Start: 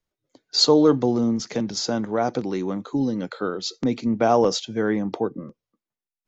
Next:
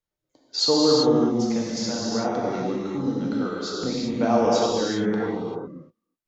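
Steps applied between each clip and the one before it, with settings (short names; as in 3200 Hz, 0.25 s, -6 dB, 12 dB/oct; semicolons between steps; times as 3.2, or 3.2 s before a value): non-linear reverb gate 0.42 s flat, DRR -5.5 dB; gain -7 dB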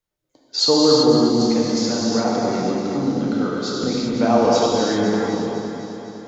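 multi-head echo 0.253 s, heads first and second, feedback 53%, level -13 dB; gain +4 dB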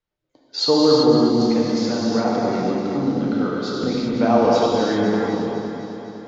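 LPF 4200 Hz 12 dB/oct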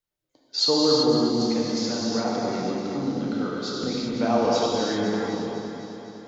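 high shelf 4300 Hz +11.5 dB; gain -6 dB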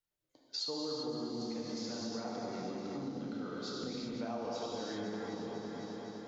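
compressor 4:1, threshold -34 dBFS, peak gain reduction 15.5 dB; gain -4.5 dB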